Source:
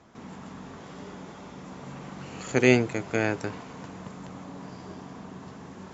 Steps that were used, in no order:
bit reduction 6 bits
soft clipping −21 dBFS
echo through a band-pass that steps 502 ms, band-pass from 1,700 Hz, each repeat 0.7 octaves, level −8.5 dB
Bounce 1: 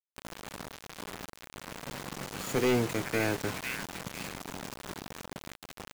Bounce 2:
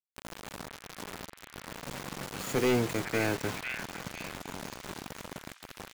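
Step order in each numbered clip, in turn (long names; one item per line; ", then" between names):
echo through a band-pass that steps, then bit reduction, then soft clipping
bit reduction, then echo through a band-pass that steps, then soft clipping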